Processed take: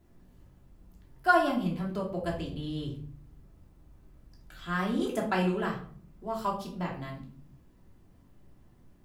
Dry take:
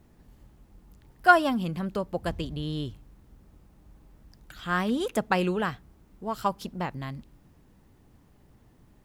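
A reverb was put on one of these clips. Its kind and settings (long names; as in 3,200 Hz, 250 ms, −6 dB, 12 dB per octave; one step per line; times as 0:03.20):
rectangular room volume 480 cubic metres, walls furnished, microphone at 3 metres
level −8 dB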